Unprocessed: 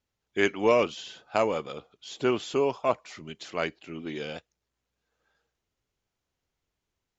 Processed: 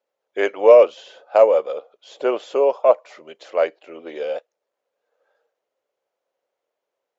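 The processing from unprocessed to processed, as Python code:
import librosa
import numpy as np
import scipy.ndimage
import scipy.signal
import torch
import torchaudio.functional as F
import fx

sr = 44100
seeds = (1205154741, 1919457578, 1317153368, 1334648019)

y = fx.highpass_res(x, sr, hz=540.0, q=4.6)
y = fx.high_shelf(y, sr, hz=2800.0, db=-10.5)
y = y * 10.0 ** (3.5 / 20.0)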